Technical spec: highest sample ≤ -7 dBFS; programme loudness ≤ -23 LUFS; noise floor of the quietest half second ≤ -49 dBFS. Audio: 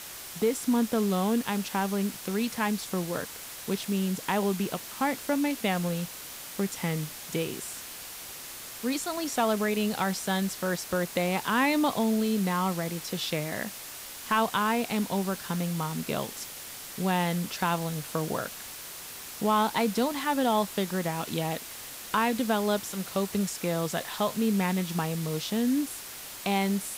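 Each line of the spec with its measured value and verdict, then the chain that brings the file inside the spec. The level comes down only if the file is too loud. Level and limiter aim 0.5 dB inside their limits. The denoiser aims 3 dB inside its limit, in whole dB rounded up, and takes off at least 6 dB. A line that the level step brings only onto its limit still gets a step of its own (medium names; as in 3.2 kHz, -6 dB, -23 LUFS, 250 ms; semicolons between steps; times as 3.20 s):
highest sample -13.5 dBFS: pass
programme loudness -29.5 LUFS: pass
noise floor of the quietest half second -42 dBFS: fail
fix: noise reduction 10 dB, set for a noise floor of -42 dBFS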